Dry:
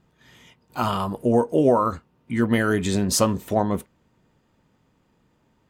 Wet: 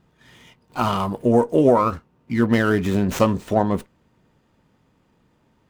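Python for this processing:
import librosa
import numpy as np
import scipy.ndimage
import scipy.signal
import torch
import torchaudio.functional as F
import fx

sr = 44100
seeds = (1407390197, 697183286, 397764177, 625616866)

y = fx.median_filter(x, sr, points=9, at=(1.78, 3.2))
y = fx.running_max(y, sr, window=3)
y = y * librosa.db_to_amplitude(2.5)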